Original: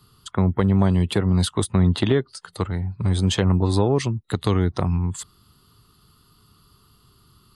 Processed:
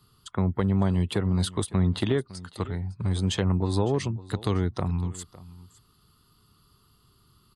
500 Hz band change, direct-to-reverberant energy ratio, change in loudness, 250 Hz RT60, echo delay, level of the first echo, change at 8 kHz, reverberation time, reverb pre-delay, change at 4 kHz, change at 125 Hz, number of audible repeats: −5.5 dB, no reverb audible, −5.5 dB, no reverb audible, 557 ms, −19.0 dB, −5.5 dB, no reverb audible, no reverb audible, −5.5 dB, −5.5 dB, 1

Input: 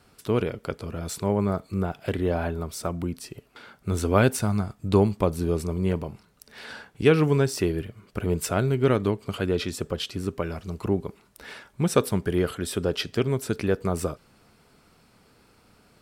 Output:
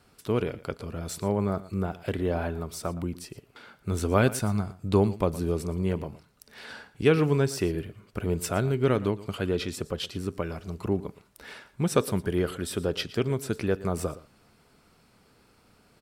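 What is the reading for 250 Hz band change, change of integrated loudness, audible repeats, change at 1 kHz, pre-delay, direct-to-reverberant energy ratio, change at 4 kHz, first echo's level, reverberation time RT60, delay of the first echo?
−2.5 dB, −2.5 dB, 1, −2.5 dB, no reverb audible, no reverb audible, −2.5 dB, −17.5 dB, no reverb audible, 116 ms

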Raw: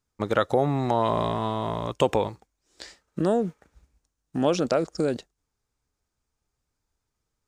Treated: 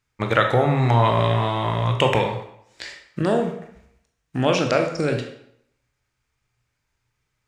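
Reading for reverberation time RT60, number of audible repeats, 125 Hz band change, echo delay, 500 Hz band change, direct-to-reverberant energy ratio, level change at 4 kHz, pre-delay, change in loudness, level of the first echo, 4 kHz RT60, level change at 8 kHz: 0.70 s, no echo audible, +10.0 dB, no echo audible, +3.0 dB, 3.0 dB, +8.5 dB, 17 ms, +5.0 dB, no echo audible, 0.55 s, +3.0 dB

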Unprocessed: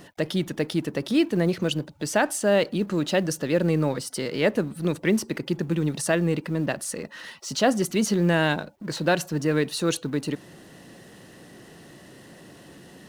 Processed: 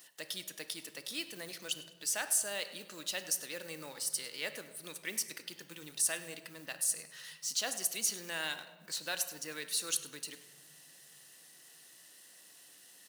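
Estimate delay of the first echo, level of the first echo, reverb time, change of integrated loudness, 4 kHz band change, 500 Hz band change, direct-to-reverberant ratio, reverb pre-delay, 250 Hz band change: 101 ms, −17.5 dB, 1.4 s, −11.0 dB, −5.5 dB, −22.0 dB, 9.0 dB, 4 ms, −28.0 dB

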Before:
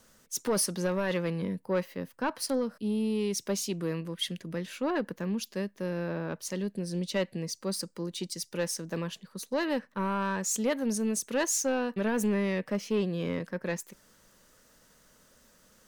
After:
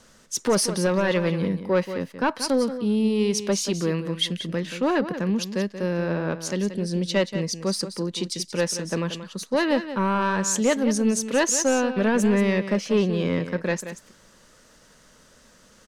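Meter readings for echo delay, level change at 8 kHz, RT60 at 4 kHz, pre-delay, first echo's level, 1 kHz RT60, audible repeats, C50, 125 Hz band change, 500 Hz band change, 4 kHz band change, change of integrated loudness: 181 ms, +6.0 dB, no reverb audible, no reverb audible, −11.0 dB, no reverb audible, 1, no reverb audible, +7.5 dB, +7.5 dB, +8.0 dB, +7.5 dB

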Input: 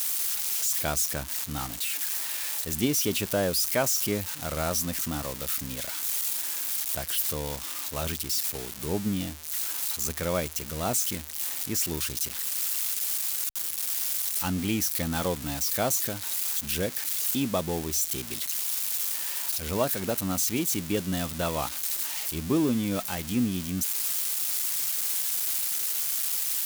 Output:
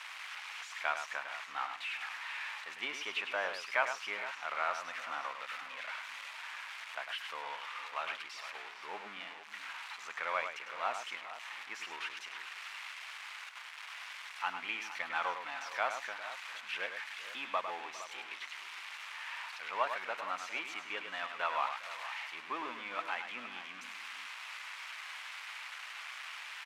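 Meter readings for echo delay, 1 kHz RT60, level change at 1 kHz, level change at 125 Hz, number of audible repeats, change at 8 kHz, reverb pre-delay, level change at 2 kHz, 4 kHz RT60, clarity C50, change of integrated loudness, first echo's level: 103 ms, no reverb audible, −0.5 dB, below −35 dB, 3, −26.5 dB, no reverb audible, +1.5 dB, no reverb audible, no reverb audible, −12.5 dB, −8.0 dB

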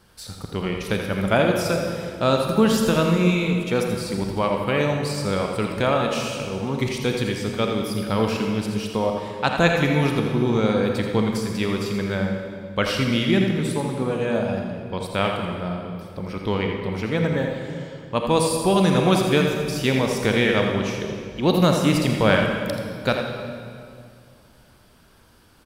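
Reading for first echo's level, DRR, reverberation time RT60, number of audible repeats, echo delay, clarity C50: −8.0 dB, 1.5 dB, 2.3 s, 1, 83 ms, 2.0 dB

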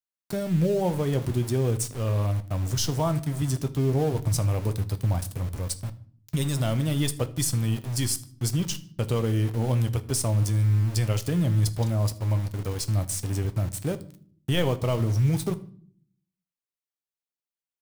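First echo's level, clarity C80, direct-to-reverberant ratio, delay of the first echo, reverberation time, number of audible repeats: −22.0 dB, 22.0 dB, 10.0 dB, 77 ms, 0.50 s, 2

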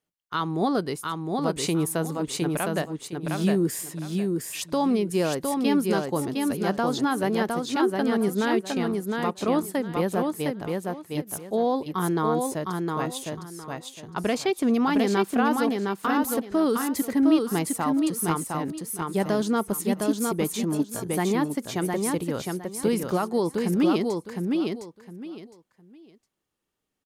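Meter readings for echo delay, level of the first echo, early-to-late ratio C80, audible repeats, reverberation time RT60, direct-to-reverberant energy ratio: 710 ms, −3.5 dB, no reverb audible, 3, no reverb audible, no reverb audible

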